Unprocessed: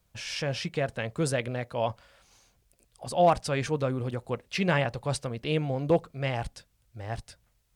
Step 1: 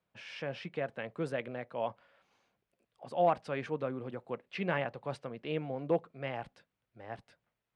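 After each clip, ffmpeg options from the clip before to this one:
-filter_complex "[0:a]acrossover=split=150 3200:gain=0.0708 1 0.1[s0][s1][s2];[s0][s1][s2]amix=inputs=3:normalize=0,volume=0.501"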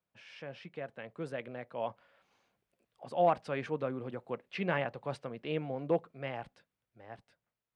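-af "dynaudnorm=f=250:g=13:m=2.24,volume=0.473"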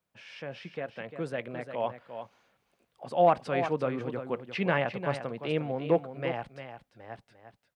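-af "aecho=1:1:350:0.335,volume=1.78"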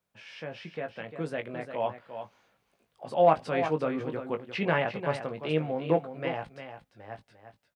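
-filter_complex "[0:a]asplit=2[s0][s1];[s1]adelay=19,volume=0.447[s2];[s0][s2]amix=inputs=2:normalize=0"

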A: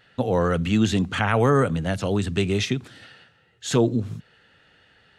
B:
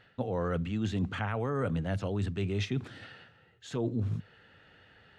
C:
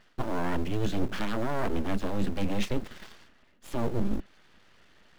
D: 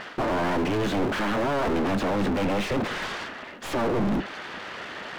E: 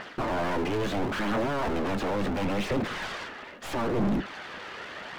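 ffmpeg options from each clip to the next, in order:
-af "lowpass=f=2500:p=1,equalizer=f=99:t=o:w=0.21:g=5,areverse,acompressor=threshold=0.0398:ratio=10,areverse"
-filter_complex "[0:a]asplit=2[s0][s1];[s1]acrusher=bits=6:mix=0:aa=0.000001,volume=0.335[s2];[s0][s2]amix=inputs=2:normalize=0,lowshelf=f=140:g=8,aeval=exprs='abs(val(0))':c=same"
-filter_complex "[0:a]asplit=2[s0][s1];[s1]highpass=f=720:p=1,volume=112,asoftclip=type=tanh:threshold=0.178[s2];[s0][s2]amix=inputs=2:normalize=0,lowpass=f=1300:p=1,volume=0.501,volume=0.75"
-af "aphaser=in_gain=1:out_gain=1:delay=2.5:decay=0.27:speed=0.74:type=triangular,volume=0.668"

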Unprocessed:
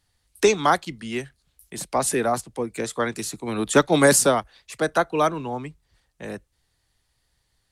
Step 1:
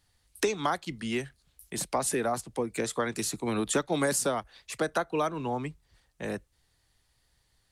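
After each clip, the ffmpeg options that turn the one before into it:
-af "acompressor=threshold=0.0501:ratio=4"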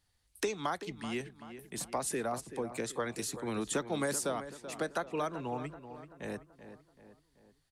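-filter_complex "[0:a]asplit=2[s0][s1];[s1]adelay=383,lowpass=f=2600:p=1,volume=0.266,asplit=2[s2][s3];[s3]adelay=383,lowpass=f=2600:p=1,volume=0.5,asplit=2[s4][s5];[s5]adelay=383,lowpass=f=2600:p=1,volume=0.5,asplit=2[s6][s7];[s7]adelay=383,lowpass=f=2600:p=1,volume=0.5,asplit=2[s8][s9];[s9]adelay=383,lowpass=f=2600:p=1,volume=0.5[s10];[s0][s2][s4][s6][s8][s10]amix=inputs=6:normalize=0,volume=0.501"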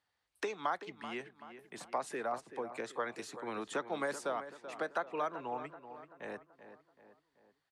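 -af "bandpass=f=1100:t=q:w=0.66:csg=0,volume=1.12"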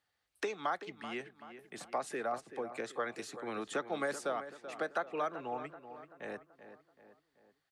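-af "bandreject=f=970:w=6.8,volume=1.12"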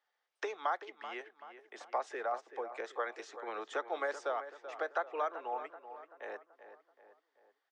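-af "highpass=f=400:w=0.5412,highpass=f=400:w=1.3066,equalizer=f=920:t=q:w=4:g=4,equalizer=f=2600:t=q:w=4:g=-4,equalizer=f=4300:t=q:w=4:g=-8,lowpass=f=5800:w=0.5412,lowpass=f=5800:w=1.3066"

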